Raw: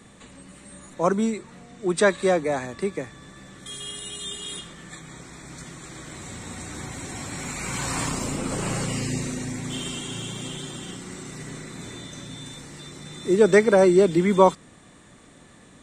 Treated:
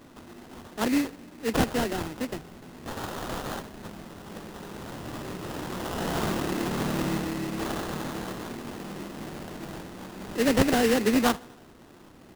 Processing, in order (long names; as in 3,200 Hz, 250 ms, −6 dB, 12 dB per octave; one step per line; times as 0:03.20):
flat-topped bell 630 Hz −12 dB
repeating echo 100 ms, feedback 59%, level −23 dB
speed change +28%
low-shelf EQ 93 Hz −11.5 dB
sample-rate reduction 2,300 Hz, jitter 20%
level +1.5 dB